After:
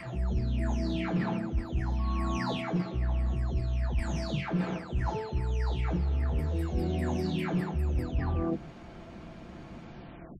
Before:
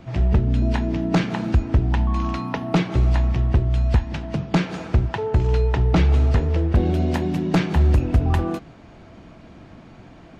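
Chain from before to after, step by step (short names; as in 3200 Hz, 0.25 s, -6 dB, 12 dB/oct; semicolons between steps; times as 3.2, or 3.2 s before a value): spectral delay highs early, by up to 0.549 s; reverse; compressor 6:1, threshold -27 dBFS, peak gain reduction 13.5 dB; reverse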